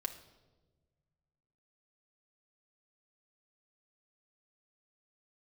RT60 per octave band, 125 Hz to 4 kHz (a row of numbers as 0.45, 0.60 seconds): 2.5, 1.9, 1.5, 1.0, 0.80, 0.85 seconds